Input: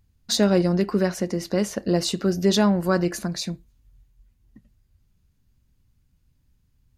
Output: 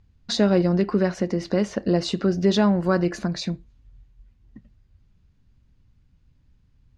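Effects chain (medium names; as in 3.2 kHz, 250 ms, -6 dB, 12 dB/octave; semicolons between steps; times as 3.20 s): in parallel at +1 dB: compression, threshold -29 dBFS, peak gain reduction 15 dB; on the sum: distance through air 130 m; trim -1.5 dB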